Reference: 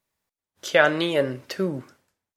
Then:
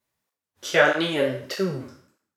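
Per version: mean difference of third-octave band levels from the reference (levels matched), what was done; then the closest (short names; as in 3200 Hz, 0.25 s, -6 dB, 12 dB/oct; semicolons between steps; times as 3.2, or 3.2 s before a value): 4.0 dB: spectral trails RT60 0.56 s; on a send: narrowing echo 0.107 s, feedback 44%, band-pass 1400 Hz, level -22.5 dB; on the sum: tape flanging out of phase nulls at 1.6 Hz, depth 6.6 ms; gain +1.5 dB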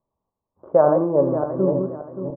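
12.0 dB: regenerating reverse delay 0.288 s, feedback 53%, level -5 dB; Chebyshev low-pass 1100 Hz, order 5; feedback echo 87 ms, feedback 31%, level -14.5 dB; gain +4.5 dB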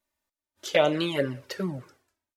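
2.5 dB: envelope flanger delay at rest 3.3 ms, full sweep at -14 dBFS; speakerphone echo 0.18 s, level -28 dB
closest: third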